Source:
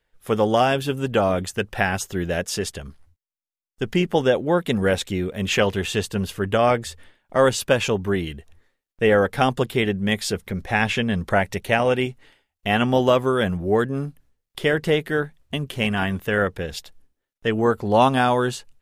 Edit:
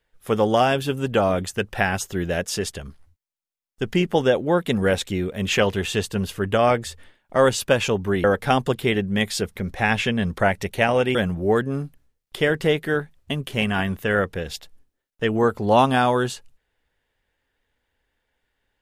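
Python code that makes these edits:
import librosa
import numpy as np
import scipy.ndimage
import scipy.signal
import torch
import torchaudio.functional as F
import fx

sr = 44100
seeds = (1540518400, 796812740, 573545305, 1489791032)

y = fx.edit(x, sr, fx.cut(start_s=8.24, length_s=0.91),
    fx.cut(start_s=12.06, length_s=1.32), tone=tone)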